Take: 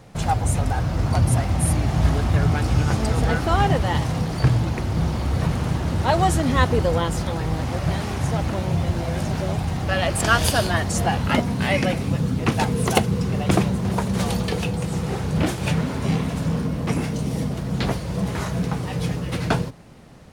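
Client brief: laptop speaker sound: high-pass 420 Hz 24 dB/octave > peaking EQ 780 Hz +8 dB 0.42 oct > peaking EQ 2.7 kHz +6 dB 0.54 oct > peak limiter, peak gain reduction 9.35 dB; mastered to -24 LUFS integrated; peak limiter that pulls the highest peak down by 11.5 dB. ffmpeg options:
-af "alimiter=limit=0.224:level=0:latency=1,highpass=f=420:w=0.5412,highpass=f=420:w=1.3066,equalizer=f=780:t=o:w=0.42:g=8,equalizer=f=2700:t=o:w=0.54:g=6,volume=1.58,alimiter=limit=0.237:level=0:latency=1"

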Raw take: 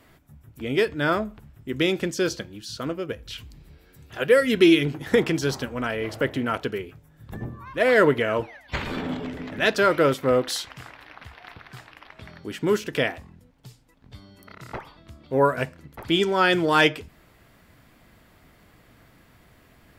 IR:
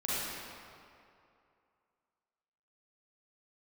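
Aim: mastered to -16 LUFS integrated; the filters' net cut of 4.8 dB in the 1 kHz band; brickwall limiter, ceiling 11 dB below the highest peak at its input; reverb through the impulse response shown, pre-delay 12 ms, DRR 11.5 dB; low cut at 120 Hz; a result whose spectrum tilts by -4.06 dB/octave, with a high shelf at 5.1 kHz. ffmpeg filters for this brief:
-filter_complex "[0:a]highpass=120,equalizer=f=1000:t=o:g=-6.5,highshelf=f=5100:g=-4,alimiter=limit=0.141:level=0:latency=1,asplit=2[s0][s1];[1:a]atrim=start_sample=2205,adelay=12[s2];[s1][s2]afir=irnorm=-1:irlink=0,volume=0.112[s3];[s0][s3]amix=inputs=2:normalize=0,volume=4.47"

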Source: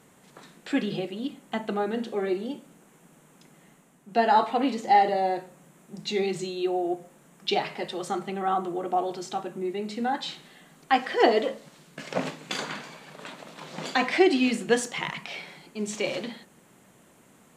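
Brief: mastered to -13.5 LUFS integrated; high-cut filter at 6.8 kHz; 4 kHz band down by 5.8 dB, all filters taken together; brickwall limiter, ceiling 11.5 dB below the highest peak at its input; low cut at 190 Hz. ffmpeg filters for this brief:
-af "highpass=190,lowpass=6800,equalizer=f=4000:t=o:g=-7.5,volume=7.5,alimiter=limit=0.841:level=0:latency=1"

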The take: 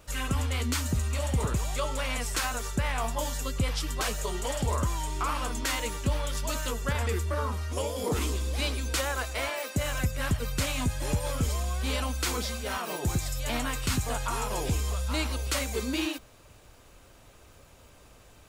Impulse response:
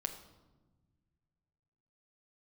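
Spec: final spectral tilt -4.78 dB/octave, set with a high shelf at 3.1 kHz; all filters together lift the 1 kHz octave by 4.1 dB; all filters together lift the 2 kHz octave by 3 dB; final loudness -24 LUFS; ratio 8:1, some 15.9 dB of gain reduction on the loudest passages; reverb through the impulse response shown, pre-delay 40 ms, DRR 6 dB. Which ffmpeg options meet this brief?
-filter_complex "[0:a]equalizer=f=1000:t=o:g=4.5,equalizer=f=2000:t=o:g=5,highshelf=f=3100:g=-7.5,acompressor=threshold=0.01:ratio=8,asplit=2[s0][s1];[1:a]atrim=start_sample=2205,adelay=40[s2];[s1][s2]afir=irnorm=-1:irlink=0,volume=0.501[s3];[s0][s3]amix=inputs=2:normalize=0,volume=7.94"

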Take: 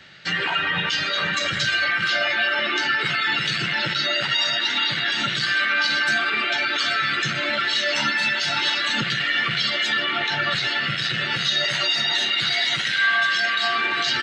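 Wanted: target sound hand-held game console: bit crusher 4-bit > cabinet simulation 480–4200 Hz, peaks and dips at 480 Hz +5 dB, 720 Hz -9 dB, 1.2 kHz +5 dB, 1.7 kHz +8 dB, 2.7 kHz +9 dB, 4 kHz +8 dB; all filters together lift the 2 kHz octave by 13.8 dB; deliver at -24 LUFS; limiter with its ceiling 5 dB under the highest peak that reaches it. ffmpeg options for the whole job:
-af "equalizer=f=2000:t=o:g=8.5,alimiter=limit=0.335:level=0:latency=1,acrusher=bits=3:mix=0:aa=0.000001,highpass=480,equalizer=f=480:t=q:w=4:g=5,equalizer=f=720:t=q:w=4:g=-9,equalizer=f=1200:t=q:w=4:g=5,equalizer=f=1700:t=q:w=4:g=8,equalizer=f=2700:t=q:w=4:g=9,equalizer=f=4000:t=q:w=4:g=8,lowpass=f=4200:w=0.5412,lowpass=f=4200:w=1.3066,volume=0.188"

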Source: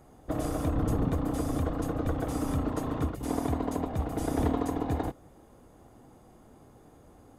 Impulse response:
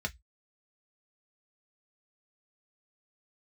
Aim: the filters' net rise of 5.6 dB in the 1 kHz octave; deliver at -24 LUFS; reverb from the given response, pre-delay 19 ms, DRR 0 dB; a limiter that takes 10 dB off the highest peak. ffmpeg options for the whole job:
-filter_complex "[0:a]equalizer=f=1000:t=o:g=7.5,alimiter=limit=0.0794:level=0:latency=1,asplit=2[s0][s1];[1:a]atrim=start_sample=2205,adelay=19[s2];[s1][s2]afir=irnorm=-1:irlink=0,volume=0.668[s3];[s0][s3]amix=inputs=2:normalize=0,volume=1.5"

